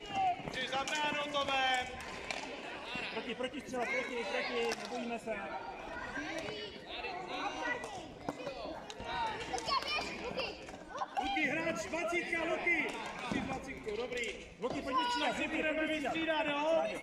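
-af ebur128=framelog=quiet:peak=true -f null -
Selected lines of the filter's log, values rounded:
Integrated loudness:
  I:         -36.4 LUFS
  Threshold: -46.5 LUFS
Loudness range:
  LRA:         5.2 LU
  Threshold: -57.0 LUFS
  LRA low:   -40.5 LUFS
  LRA high:  -35.2 LUFS
True peak:
  Peak:      -19.5 dBFS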